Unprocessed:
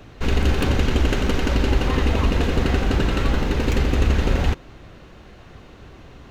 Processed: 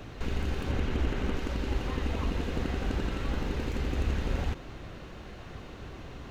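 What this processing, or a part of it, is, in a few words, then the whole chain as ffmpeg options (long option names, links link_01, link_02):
de-esser from a sidechain: -filter_complex "[0:a]asettb=1/sr,asplit=3[link_01][link_02][link_03];[link_01]atrim=end=0.714[link_04];[link_02]atrim=start=0.71:end=1.37,asetpts=PTS-STARTPTS,afade=type=in:duration=0.004:curve=qsin,afade=type=out:start_time=0.656:duration=0.004:curve=qsin,acrossover=split=3100[link_05][link_06];[link_06]acompressor=threshold=-42dB:ratio=4:attack=1:release=60[link_07];[link_05][link_07]amix=inputs=2:normalize=0[link_08];[link_03]atrim=start=1.366[link_09];[link_04][link_08]acrossfade=duration=0.004:curve1=hsin:curve2=qsin[link_10];[link_10][link_09]acrossfade=duration=0.004:curve1=qsin:curve2=hsin,asplit=2[link_11][link_12];[link_12]highpass=4400,apad=whole_len=278135[link_13];[link_11][link_13]sidechaincompress=threshold=-53dB:ratio=4:attack=1.1:release=22"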